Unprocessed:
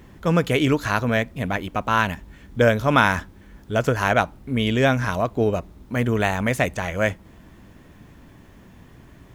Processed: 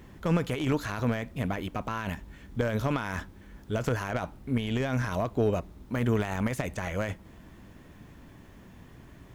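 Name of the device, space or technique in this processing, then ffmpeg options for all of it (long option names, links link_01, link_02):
de-esser from a sidechain: -filter_complex "[0:a]asplit=2[link_01][link_02];[link_02]highpass=frequency=4900:poles=1,apad=whole_len=412178[link_03];[link_01][link_03]sidechaincompress=threshold=-36dB:ratio=8:attack=0.64:release=21,volume=-3dB"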